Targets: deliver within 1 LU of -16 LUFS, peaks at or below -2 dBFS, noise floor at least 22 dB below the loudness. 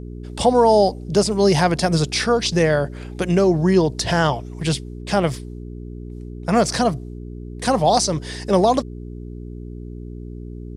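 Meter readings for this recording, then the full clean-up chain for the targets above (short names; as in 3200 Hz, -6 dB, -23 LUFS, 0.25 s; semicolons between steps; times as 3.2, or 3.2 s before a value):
hum 60 Hz; harmonics up to 420 Hz; hum level -31 dBFS; loudness -19.0 LUFS; peak -2.0 dBFS; loudness target -16.0 LUFS
-> de-hum 60 Hz, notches 7; gain +3 dB; limiter -2 dBFS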